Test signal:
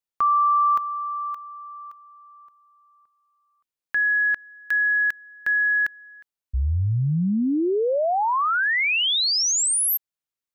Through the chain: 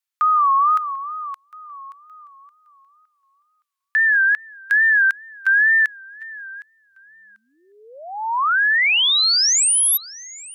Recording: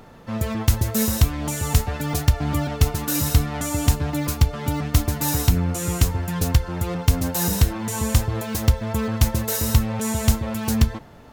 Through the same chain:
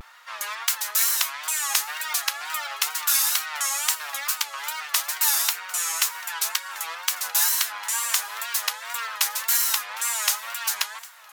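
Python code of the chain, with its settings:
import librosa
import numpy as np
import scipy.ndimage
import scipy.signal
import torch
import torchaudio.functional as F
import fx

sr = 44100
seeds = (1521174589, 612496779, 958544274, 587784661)

p1 = scipy.signal.sosfilt(scipy.signal.butter(4, 1100.0, 'highpass', fs=sr, output='sos'), x)
p2 = p1 + fx.echo_feedback(p1, sr, ms=750, feedback_pct=24, wet_db=-20.5, dry=0)
p3 = fx.wow_flutter(p2, sr, seeds[0], rate_hz=2.1, depth_cents=120.0)
y = p3 * 10.0 ** (5.0 / 20.0)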